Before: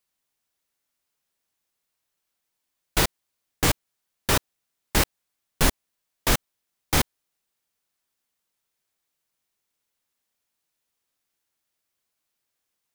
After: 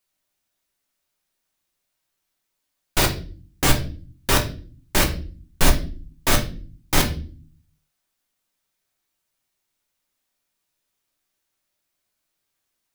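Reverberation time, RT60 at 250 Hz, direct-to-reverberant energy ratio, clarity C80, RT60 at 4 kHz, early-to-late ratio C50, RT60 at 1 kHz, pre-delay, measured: 0.40 s, 0.80 s, 2.0 dB, 16.5 dB, 0.35 s, 11.5 dB, 0.35 s, 3 ms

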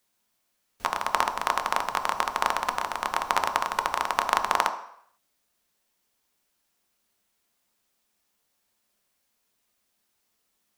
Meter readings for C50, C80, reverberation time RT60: 11.0 dB, 14.0 dB, 0.65 s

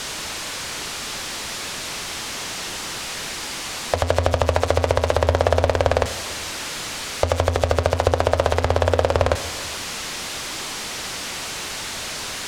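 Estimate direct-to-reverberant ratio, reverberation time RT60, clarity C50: 11.0 dB, 1.5 s, 13.0 dB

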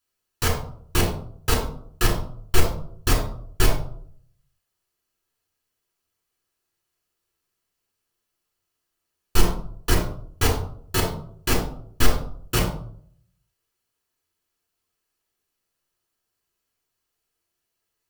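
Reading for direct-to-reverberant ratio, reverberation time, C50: -2.0 dB, 0.60 s, 5.0 dB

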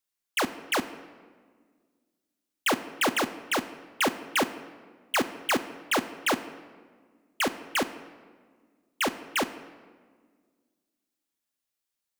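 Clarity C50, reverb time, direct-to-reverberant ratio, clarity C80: 13.5 dB, 1.7 s, 9.5 dB, 15.0 dB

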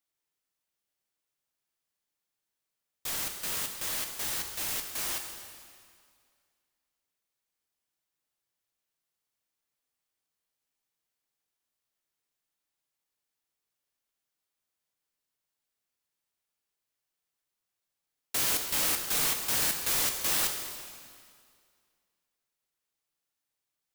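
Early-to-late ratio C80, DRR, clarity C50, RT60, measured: 6.5 dB, 4.0 dB, 5.5 dB, 2.1 s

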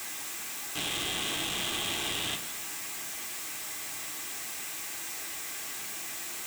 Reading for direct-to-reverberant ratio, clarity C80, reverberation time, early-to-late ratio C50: 2.5 dB, 14.0 dB, 1.1 s, 12.0 dB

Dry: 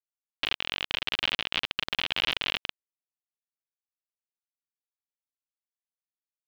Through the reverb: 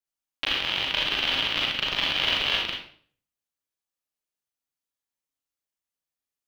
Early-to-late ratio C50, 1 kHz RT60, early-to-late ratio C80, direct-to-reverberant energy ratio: 3.0 dB, 0.45 s, 7.0 dB, -2.5 dB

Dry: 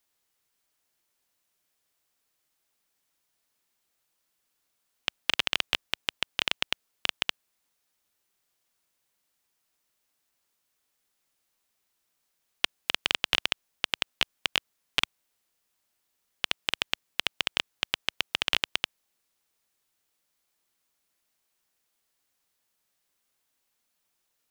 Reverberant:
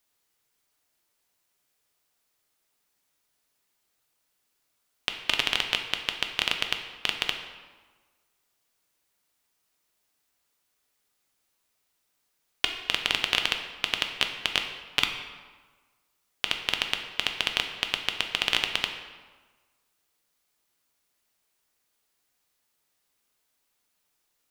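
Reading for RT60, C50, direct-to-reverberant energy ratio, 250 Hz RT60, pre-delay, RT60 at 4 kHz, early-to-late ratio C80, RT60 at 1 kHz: 1.4 s, 7.0 dB, 4.0 dB, 1.4 s, 3 ms, 0.95 s, 8.5 dB, 1.4 s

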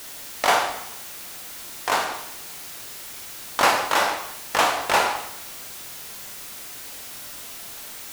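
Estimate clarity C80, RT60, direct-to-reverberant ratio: 9.5 dB, 0.75 s, 2.5 dB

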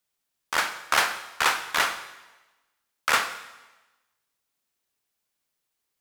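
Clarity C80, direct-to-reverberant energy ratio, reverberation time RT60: 13.0 dB, 9.0 dB, 1.1 s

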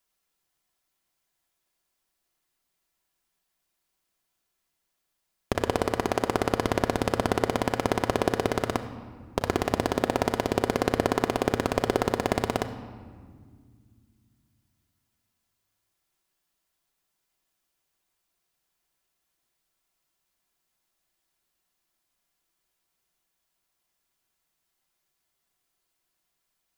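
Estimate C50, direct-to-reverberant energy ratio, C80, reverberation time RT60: 10.5 dB, 5.5 dB, 11.5 dB, 1.9 s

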